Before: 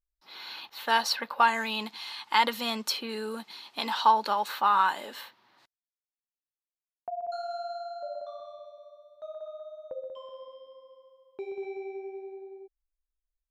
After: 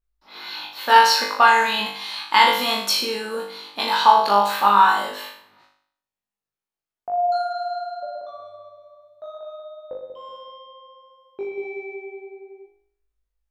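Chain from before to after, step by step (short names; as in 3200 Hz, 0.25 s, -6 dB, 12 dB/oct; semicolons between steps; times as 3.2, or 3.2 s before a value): flutter echo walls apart 3.4 m, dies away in 0.61 s; mismatched tape noise reduction decoder only; gain +5.5 dB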